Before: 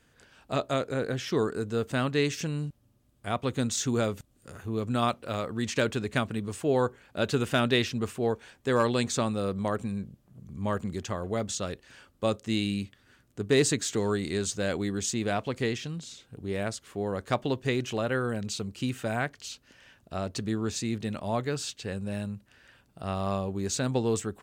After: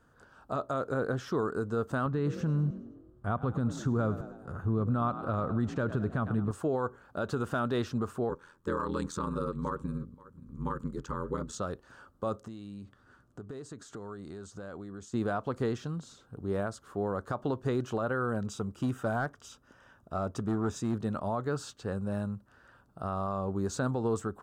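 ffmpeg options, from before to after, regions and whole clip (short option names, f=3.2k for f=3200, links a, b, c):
-filter_complex "[0:a]asettb=1/sr,asplit=3[a][b][c];[a]atrim=end=2.064[d];[b]atrim=start=2.06:end=6.51,asetpts=PTS-STARTPTS,afade=t=in:d=0.004:c=qsin,afade=t=out:st=4.446:d=0.004:c=qsin,bass=f=250:g=8,treble=f=4k:g=-10,asplit=6[e][f][g][h][i][j];[f]adelay=104,afreqshift=43,volume=-17dB[k];[g]adelay=208,afreqshift=86,volume=-22.7dB[l];[h]adelay=312,afreqshift=129,volume=-28.4dB[m];[i]adelay=416,afreqshift=172,volume=-34dB[n];[j]adelay=520,afreqshift=215,volume=-39.7dB[o];[e][k][l][m][n][o]amix=inputs=6:normalize=0,atrim=end_sample=196245[p];[c]atrim=start=6.506[q];[d][p]acrossfade=d=0.004:c1=hsin:c2=qsin[r];[r][q]acrossfade=d=0.004:c1=qsin:c2=hsin,asettb=1/sr,asplit=3[s][t][u];[s]atrim=end=8.294[v];[t]atrim=start=8.29:end=11.53,asetpts=PTS-STARTPTS,afade=t=in:d=0.004:c=qsin,afade=t=out:st=3.236:d=0.004:c=qsin,asuperstop=centerf=680:order=8:qfactor=2.3,aeval=exprs='val(0)*sin(2*PI*42*n/s)':c=same,aecho=1:1:531:0.0668,atrim=end_sample=142884[w];[u]atrim=start=11.526[x];[v][w]acrossfade=d=0.004:c1=hsin:c2=qsin[y];[y][x]acrossfade=d=0.004:c1=qsin:c2=hsin,asettb=1/sr,asplit=3[z][aa][ab];[z]atrim=end=12.474[ac];[aa]atrim=start=12.47:end=15.14,asetpts=PTS-STARTPTS,afade=t=in:d=0.004:c=qsin,afade=t=out:st=2.666:d=0.004:c=qsin,lowpass=11k,acompressor=threshold=-39dB:ratio=12:attack=3.2:release=140:knee=1:detection=peak[ad];[ab]atrim=start=15.136[ae];[ac][ad]acrossfade=d=0.004:c1=hsin:c2=qsin[af];[af][ae]acrossfade=d=0.004:c1=qsin:c2=hsin,asettb=1/sr,asplit=3[ag][ah][ai];[ag]atrim=end=18.484[aj];[ah]atrim=start=18.48:end=20.94,asetpts=PTS-STARTPTS,afade=t=in:d=0.004:c=qsin,afade=t=out:st=2.456:d=0.004:c=qsin,asuperstop=centerf=4300:order=8:qfactor=7.5,asoftclip=type=hard:threshold=-24.5dB[ak];[ai]atrim=start=20.936[al];[aj][ak]acrossfade=d=0.004:c1=hsin:c2=qsin[am];[am][al]acrossfade=d=0.004:c1=qsin:c2=hsin,highshelf=f=1.7k:t=q:w=3:g=-8.5,alimiter=limit=-21.5dB:level=0:latency=1:release=112"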